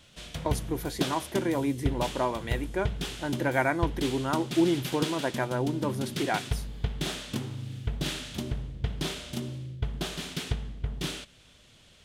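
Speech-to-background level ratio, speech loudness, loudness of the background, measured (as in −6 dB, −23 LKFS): 4.5 dB, −30.5 LKFS, −35.0 LKFS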